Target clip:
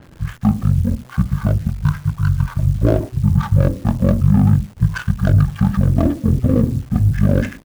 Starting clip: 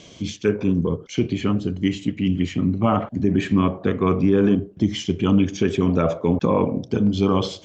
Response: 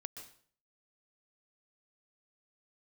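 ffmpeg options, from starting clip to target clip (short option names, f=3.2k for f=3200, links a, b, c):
-af "adynamicsmooth=sensitivity=4.5:basefreq=1.3k,bandreject=f=252.7:t=h:w=4,bandreject=f=505.4:t=h:w=4,bandreject=f=758.1:t=h:w=4,bandreject=f=1.0108k:t=h:w=4,asetrate=22050,aresample=44100,atempo=2,acrusher=bits=9:dc=4:mix=0:aa=0.000001,adynamicequalizer=threshold=0.002:dfrequency=5500:dqfactor=0.7:tfrequency=5500:tqfactor=0.7:attack=5:release=100:ratio=0.375:range=2:mode=boostabove:tftype=highshelf,volume=5dB"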